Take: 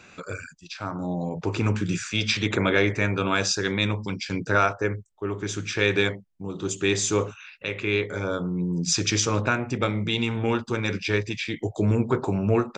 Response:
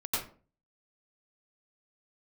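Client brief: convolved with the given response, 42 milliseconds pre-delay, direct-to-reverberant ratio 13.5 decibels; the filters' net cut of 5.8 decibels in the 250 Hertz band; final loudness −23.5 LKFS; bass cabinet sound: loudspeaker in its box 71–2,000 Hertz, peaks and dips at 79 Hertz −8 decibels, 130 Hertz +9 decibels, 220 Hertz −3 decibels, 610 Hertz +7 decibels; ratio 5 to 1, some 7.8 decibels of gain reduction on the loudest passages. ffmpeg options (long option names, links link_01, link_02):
-filter_complex "[0:a]equalizer=frequency=250:width_type=o:gain=-8,acompressor=threshold=-25dB:ratio=5,asplit=2[link_01][link_02];[1:a]atrim=start_sample=2205,adelay=42[link_03];[link_02][link_03]afir=irnorm=-1:irlink=0,volume=-19.5dB[link_04];[link_01][link_04]amix=inputs=2:normalize=0,highpass=frequency=71:width=0.5412,highpass=frequency=71:width=1.3066,equalizer=frequency=79:width_type=q:width=4:gain=-8,equalizer=frequency=130:width_type=q:width=4:gain=9,equalizer=frequency=220:width_type=q:width=4:gain=-3,equalizer=frequency=610:width_type=q:width=4:gain=7,lowpass=frequency=2000:width=0.5412,lowpass=frequency=2000:width=1.3066,volume=8dB"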